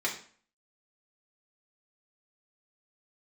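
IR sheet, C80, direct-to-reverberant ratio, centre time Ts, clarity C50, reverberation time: 13.0 dB, -3.5 dB, 21 ms, 8.5 dB, 0.45 s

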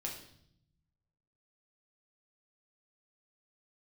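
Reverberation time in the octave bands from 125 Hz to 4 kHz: 1.6, 1.2, 0.75, 0.60, 0.60, 0.70 s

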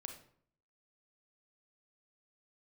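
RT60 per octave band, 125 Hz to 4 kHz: 0.75, 0.70, 0.60, 0.55, 0.50, 0.40 s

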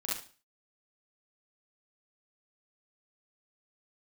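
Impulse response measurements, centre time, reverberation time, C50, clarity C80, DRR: 53 ms, not exponential, -1.0 dB, 9.5 dB, -6.5 dB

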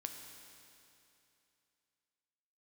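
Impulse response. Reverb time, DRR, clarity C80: 2.8 s, 4.0 dB, 6.0 dB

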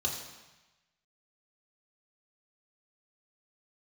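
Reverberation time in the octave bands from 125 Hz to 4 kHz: 1.2, 1.0, 1.0, 1.1, 1.2, 1.1 s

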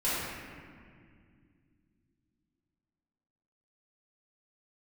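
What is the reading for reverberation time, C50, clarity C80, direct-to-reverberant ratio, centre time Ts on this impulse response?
2.2 s, -3.5 dB, -1.0 dB, -12.0 dB, 0.136 s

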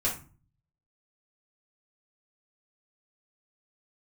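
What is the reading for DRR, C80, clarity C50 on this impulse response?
-7.0 dB, 14.5 dB, 8.0 dB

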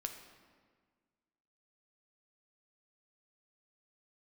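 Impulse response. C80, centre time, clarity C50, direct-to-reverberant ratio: 9.0 dB, 27 ms, 7.5 dB, 4.5 dB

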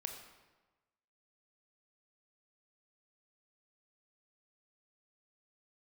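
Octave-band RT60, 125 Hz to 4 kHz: 1.3, 1.2, 1.2, 1.2, 1.0, 0.90 s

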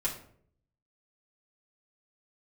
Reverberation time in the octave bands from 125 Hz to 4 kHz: 0.95, 0.75, 0.70, 0.50, 0.45, 0.35 s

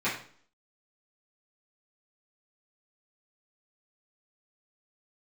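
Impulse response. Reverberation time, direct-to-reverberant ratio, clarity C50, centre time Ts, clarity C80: 0.50 s, -12.0 dB, 6.0 dB, 33 ms, 10.5 dB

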